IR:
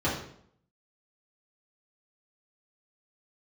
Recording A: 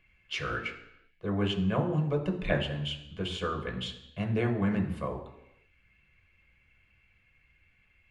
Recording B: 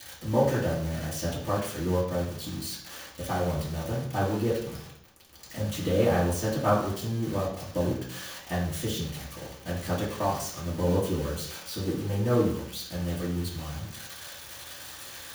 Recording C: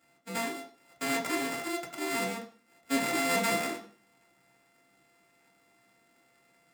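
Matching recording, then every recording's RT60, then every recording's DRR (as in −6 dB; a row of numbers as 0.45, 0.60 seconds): B; 0.85, 0.65, 0.45 seconds; 2.5, −9.0, −0.5 decibels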